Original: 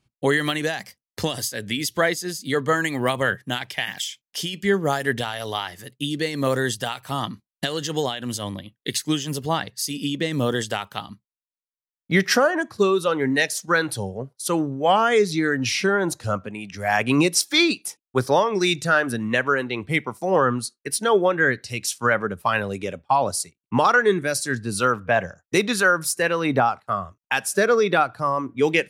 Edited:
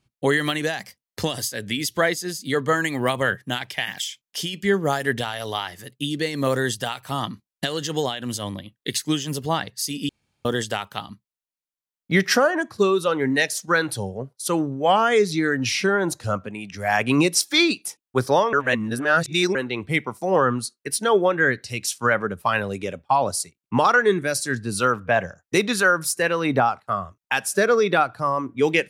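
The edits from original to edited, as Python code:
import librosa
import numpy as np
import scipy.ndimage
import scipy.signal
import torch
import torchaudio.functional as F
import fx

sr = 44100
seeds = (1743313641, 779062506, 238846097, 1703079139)

y = fx.edit(x, sr, fx.room_tone_fill(start_s=10.09, length_s=0.36),
    fx.reverse_span(start_s=18.53, length_s=1.02), tone=tone)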